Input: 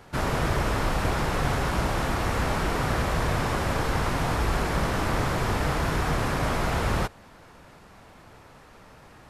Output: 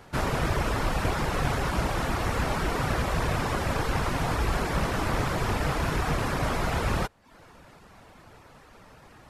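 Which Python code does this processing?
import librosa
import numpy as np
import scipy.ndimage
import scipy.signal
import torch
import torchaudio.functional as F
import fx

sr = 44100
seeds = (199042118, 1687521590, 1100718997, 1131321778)

y = fx.rattle_buzz(x, sr, strikes_db=-23.0, level_db=-28.0)
y = fx.dereverb_blind(y, sr, rt60_s=0.53)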